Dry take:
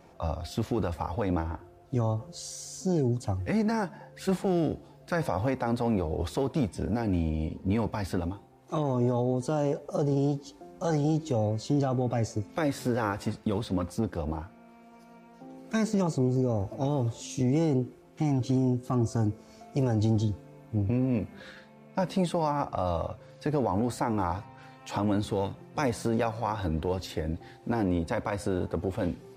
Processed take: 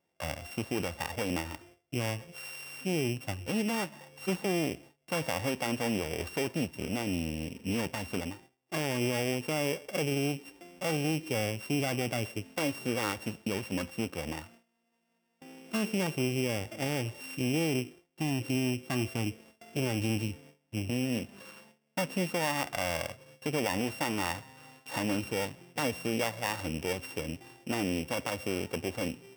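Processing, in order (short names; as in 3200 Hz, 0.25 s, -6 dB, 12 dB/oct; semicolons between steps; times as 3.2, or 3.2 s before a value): sample sorter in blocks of 16 samples; gate with hold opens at -40 dBFS; HPF 170 Hz 6 dB/oct; gain -2.5 dB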